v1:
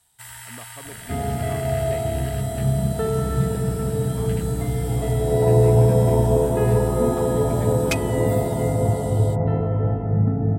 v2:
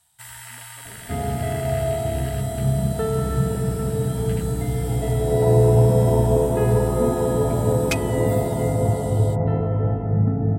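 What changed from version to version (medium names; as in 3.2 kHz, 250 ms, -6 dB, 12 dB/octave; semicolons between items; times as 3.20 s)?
speech -12.0 dB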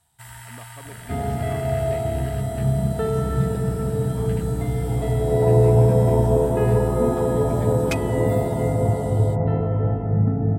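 speech +10.0 dB; first sound: add tilt shelf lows +5.5 dB, about 1.2 kHz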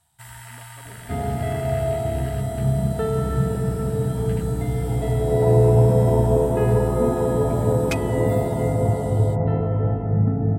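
speech -7.0 dB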